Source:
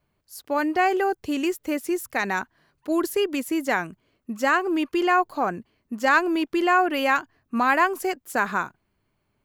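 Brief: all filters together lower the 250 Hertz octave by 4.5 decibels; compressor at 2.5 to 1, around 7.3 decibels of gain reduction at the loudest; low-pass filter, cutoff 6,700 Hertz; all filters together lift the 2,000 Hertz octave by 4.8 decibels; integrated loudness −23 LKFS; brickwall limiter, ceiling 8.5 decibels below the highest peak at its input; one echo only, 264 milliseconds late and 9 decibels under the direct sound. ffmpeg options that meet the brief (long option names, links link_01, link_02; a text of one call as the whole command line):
ffmpeg -i in.wav -af "lowpass=6700,equalizer=frequency=250:width_type=o:gain=-7,equalizer=frequency=2000:width_type=o:gain=6.5,acompressor=threshold=-22dB:ratio=2.5,alimiter=limit=-18dB:level=0:latency=1,aecho=1:1:264:0.355,volume=6dB" out.wav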